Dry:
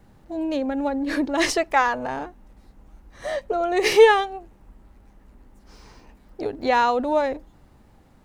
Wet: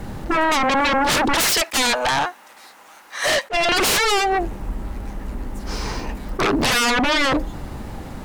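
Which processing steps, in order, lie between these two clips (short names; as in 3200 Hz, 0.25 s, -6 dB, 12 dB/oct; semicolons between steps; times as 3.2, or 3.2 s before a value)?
1.35–3.69 HPF 1100 Hz 12 dB/oct; compressor 16:1, threshold -24 dBFS, peak gain reduction 17.5 dB; sine folder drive 18 dB, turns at -15 dBFS; attack slew limiter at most 440 dB/s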